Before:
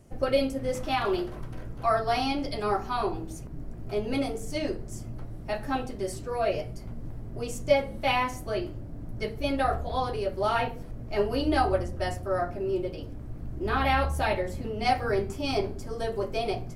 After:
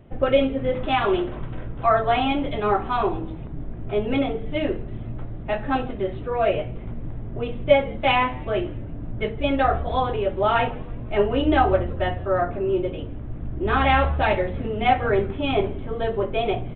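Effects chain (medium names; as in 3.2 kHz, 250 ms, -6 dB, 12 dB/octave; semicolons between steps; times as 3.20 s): frequency-shifting echo 165 ms, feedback 56%, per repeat -110 Hz, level -24 dB; resampled via 8 kHz; trim +6 dB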